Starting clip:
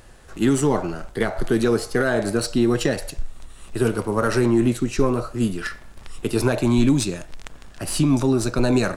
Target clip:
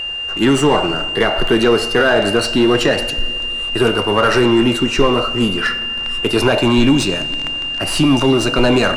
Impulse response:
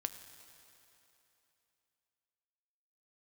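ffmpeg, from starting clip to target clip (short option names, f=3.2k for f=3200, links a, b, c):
-filter_complex "[0:a]aeval=exprs='val(0)+0.0251*sin(2*PI*2800*n/s)':c=same,asplit=2[a][b];[b]highpass=f=720:p=1,volume=17dB,asoftclip=type=tanh:threshold=-5.5dB[c];[a][c]amix=inputs=2:normalize=0,lowpass=f=2.3k:p=1,volume=-6dB,asplit=2[d][e];[1:a]atrim=start_sample=2205,lowshelf=f=98:g=11.5[f];[e][f]afir=irnorm=-1:irlink=0,volume=1.5dB[g];[d][g]amix=inputs=2:normalize=0,volume=-3.5dB"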